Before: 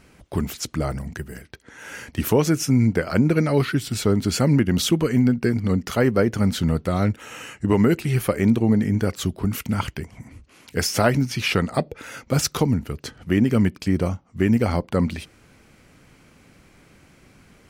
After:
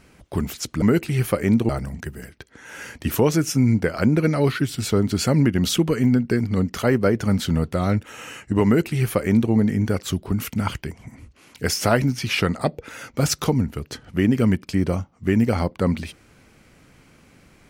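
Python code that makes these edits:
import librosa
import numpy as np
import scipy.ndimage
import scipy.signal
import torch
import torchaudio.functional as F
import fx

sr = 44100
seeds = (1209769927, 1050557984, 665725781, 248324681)

y = fx.edit(x, sr, fx.duplicate(start_s=7.78, length_s=0.87, to_s=0.82), tone=tone)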